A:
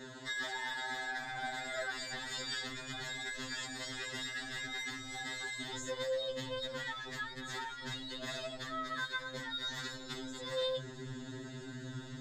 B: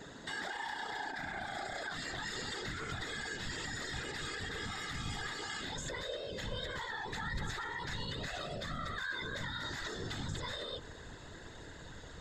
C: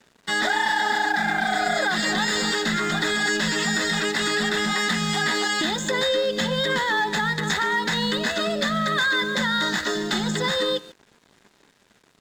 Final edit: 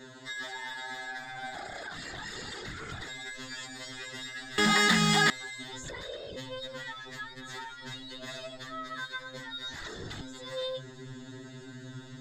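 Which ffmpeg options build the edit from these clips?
-filter_complex "[1:a]asplit=3[a][b][c];[0:a]asplit=5[d][e][f][g][h];[d]atrim=end=1.552[i];[a]atrim=start=1.548:end=3.082[j];[e]atrim=start=3.078:end=4.582[k];[2:a]atrim=start=4.578:end=5.302[l];[f]atrim=start=5.298:end=5.842[m];[b]atrim=start=5.838:end=6.362[n];[g]atrim=start=6.358:end=9.742[o];[c]atrim=start=9.738:end=10.212[p];[h]atrim=start=10.208[q];[i][j]acrossfade=d=0.004:c1=hsin:c2=hsin[r];[r][k]acrossfade=d=0.004:c1=hsin:c2=hsin[s];[s][l]acrossfade=d=0.004:c1=hsin:c2=hsin[t];[t][m]acrossfade=d=0.004:c1=hsin:c2=hsin[u];[u][n]acrossfade=d=0.004:c1=hsin:c2=hsin[v];[v][o]acrossfade=d=0.004:c1=hsin:c2=hsin[w];[w][p]acrossfade=d=0.004:c1=hsin:c2=hsin[x];[x][q]acrossfade=d=0.004:c1=hsin:c2=hsin"

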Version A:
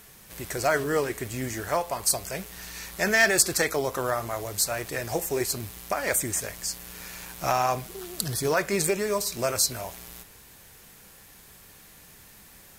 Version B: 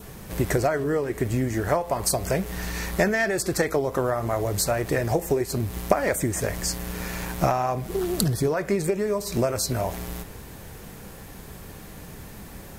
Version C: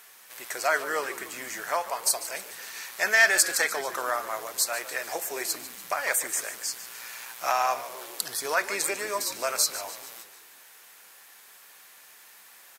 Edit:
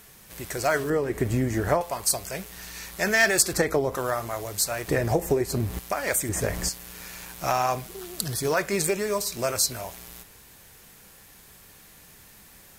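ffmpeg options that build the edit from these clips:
-filter_complex "[1:a]asplit=4[a][b][c][d];[0:a]asplit=5[e][f][g][h][i];[e]atrim=end=0.902[j];[a]atrim=start=0.898:end=1.812[k];[f]atrim=start=1.808:end=3.532[l];[b]atrim=start=3.528:end=3.952[m];[g]atrim=start=3.948:end=4.882[n];[c]atrim=start=4.878:end=5.792[o];[h]atrim=start=5.788:end=6.292[p];[d]atrim=start=6.288:end=6.692[q];[i]atrim=start=6.688[r];[j][k]acrossfade=d=0.004:c1=hsin:c2=hsin[s];[s][l]acrossfade=d=0.004:c1=hsin:c2=hsin[t];[t][m]acrossfade=d=0.004:c1=hsin:c2=hsin[u];[u][n]acrossfade=d=0.004:c1=hsin:c2=hsin[v];[v][o]acrossfade=d=0.004:c1=hsin:c2=hsin[w];[w][p]acrossfade=d=0.004:c1=hsin:c2=hsin[x];[x][q]acrossfade=d=0.004:c1=hsin:c2=hsin[y];[y][r]acrossfade=d=0.004:c1=hsin:c2=hsin"

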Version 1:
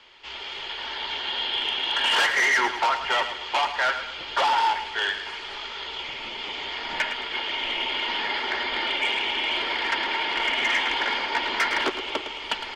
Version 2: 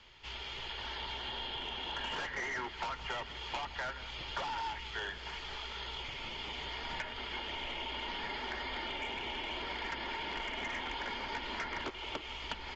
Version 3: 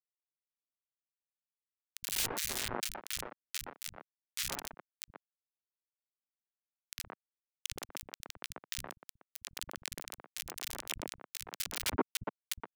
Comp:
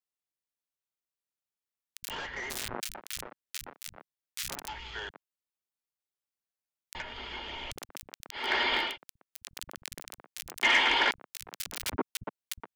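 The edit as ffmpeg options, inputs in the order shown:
-filter_complex "[1:a]asplit=3[a][b][c];[0:a]asplit=2[d][e];[2:a]asplit=6[f][g][h][i][j][k];[f]atrim=end=2.102[l];[a]atrim=start=2.098:end=2.502[m];[g]atrim=start=2.498:end=4.682[n];[b]atrim=start=4.678:end=5.092[o];[h]atrim=start=5.088:end=6.952[p];[c]atrim=start=6.948:end=7.712[q];[i]atrim=start=7.708:end=8.55[r];[d]atrim=start=8.31:end=8.98[s];[j]atrim=start=8.74:end=10.632[t];[e]atrim=start=10.628:end=11.112[u];[k]atrim=start=11.108[v];[l][m]acrossfade=d=0.004:c1=hsin:c2=hsin[w];[w][n]acrossfade=d=0.004:c1=hsin:c2=hsin[x];[x][o]acrossfade=d=0.004:c1=hsin:c2=hsin[y];[y][p]acrossfade=d=0.004:c1=hsin:c2=hsin[z];[z][q]acrossfade=d=0.004:c1=hsin:c2=hsin[aa];[aa][r]acrossfade=d=0.004:c1=hsin:c2=hsin[ab];[ab][s]acrossfade=d=0.24:c1=tri:c2=tri[ac];[ac][t]acrossfade=d=0.24:c1=tri:c2=tri[ad];[ad][u]acrossfade=d=0.004:c1=hsin:c2=hsin[ae];[ae][v]acrossfade=d=0.004:c1=hsin:c2=hsin"

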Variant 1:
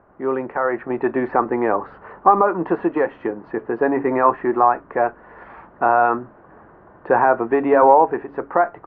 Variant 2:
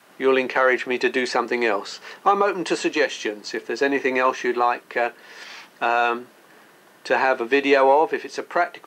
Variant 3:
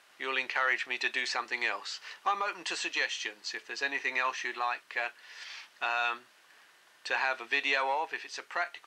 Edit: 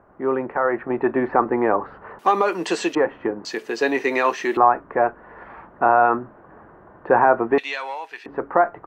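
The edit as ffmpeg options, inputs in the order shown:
-filter_complex "[1:a]asplit=2[a][b];[0:a]asplit=4[c][d][e][f];[c]atrim=end=2.192[g];[a]atrim=start=2.188:end=2.952[h];[d]atrim=start=2.948:end=3.452[i];[b]atrim=start=3.448:end=4.572[j];[e]atrim=start=4.568:end=7.582[k];[2:a]atrim=start=7.578:end=8.262[l];[f]atrim=start=8.258[m];[g][h]acrossfade=d=0.004:c1=hsin:c2=hsin[n];[n][i]acrossfade=d=0.004:c1=hsin:c2=hsin[o];[o][j]acrossfade=d=0.004:c1=hsin:c2=hsin[p];[p][k]acrossfade=d=0.004:c1=hsin:c2=hsin[q];[q][l]acrossfade=d=0.004:c1=hsin:c2=hsin[r];[r][m]acrossfade=d=0.004:c1=hsin:c2=hsin"

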